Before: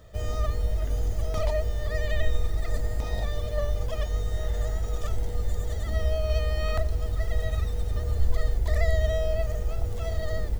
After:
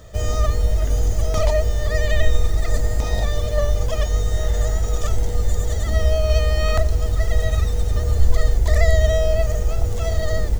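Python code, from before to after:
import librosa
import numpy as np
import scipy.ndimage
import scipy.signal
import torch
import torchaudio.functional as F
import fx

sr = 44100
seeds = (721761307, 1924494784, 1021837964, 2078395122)

y = fx.peak_eq(x, sr, hz=6600.0, db=6.5, octaves=0.62)
y = F.gain(torch.from_numpy(y), 8.0).numpy()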